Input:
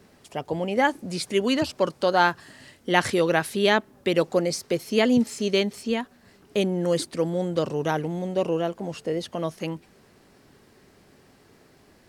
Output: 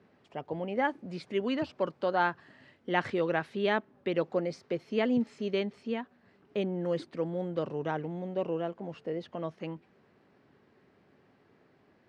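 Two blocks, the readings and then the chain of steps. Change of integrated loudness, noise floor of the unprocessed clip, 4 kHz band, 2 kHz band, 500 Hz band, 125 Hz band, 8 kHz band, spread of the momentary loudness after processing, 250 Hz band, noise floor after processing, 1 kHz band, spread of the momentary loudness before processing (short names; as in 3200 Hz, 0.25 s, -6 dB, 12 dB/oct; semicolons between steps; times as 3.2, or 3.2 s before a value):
-8.0 dB, -57 dBFS, -13.5 dB, -8.5 dB, -7.5 dB, -8.0 dB, under -25 dB, 11 LU, -7.5 dB, -66 dBFS, -7.5 dB, 10 LU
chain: BPF 100–2600 Hz; gain -7.5 dB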